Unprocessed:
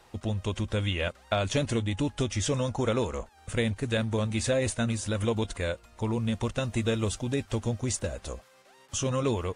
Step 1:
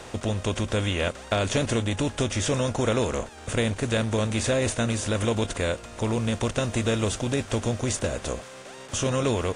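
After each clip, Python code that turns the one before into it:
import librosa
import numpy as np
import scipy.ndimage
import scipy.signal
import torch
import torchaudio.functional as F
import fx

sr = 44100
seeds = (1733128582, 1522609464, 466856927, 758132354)

y = fx.bin_compress(x, sr, power=0.6)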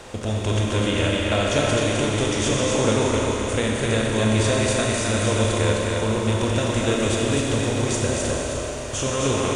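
y = x + 10.0 ** (-3.5 / 20.0) * np.pad(x, (int(259 * sr / 1000.0), 0))[:len(x)]
y = fx.rev_schroeder(y, sr, rt60_s=3.3, comb_ms=29, drr_db=-1.5)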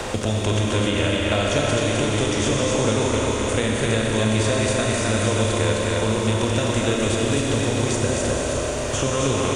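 y = fx.band_squash(x, sr, depth_pct=70)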